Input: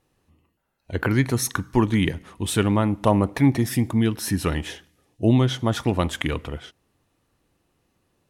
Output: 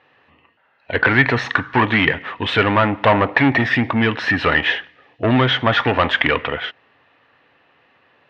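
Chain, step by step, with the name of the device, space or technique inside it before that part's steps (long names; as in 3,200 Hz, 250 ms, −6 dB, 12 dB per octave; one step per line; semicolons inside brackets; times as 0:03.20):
overdrive pedal into a guitar cabinet (mid-hump overdrive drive 23 dB, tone 2,800 Hz, clips at −5.5 dBFS; loudspeaker in its box 89–3,600 Hz, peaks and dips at 190 Hz −8 dB, 340 Hz −8 dB, 1,800 Hz +7 dB, 2,700 Hz +3 dB)
level +1.5 dB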